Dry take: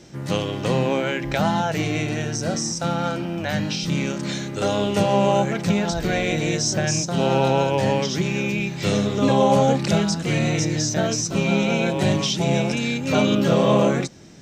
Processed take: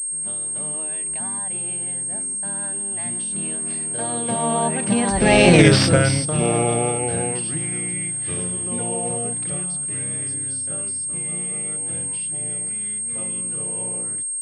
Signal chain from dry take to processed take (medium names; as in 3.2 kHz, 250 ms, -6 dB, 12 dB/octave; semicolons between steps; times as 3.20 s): Doppler pass-by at 5.58 s, 47 m/s, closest 2.8 m; loudness maximiser +23.5 dB; class-D stage that switches slowly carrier 8.5 kHz; trim -1 dB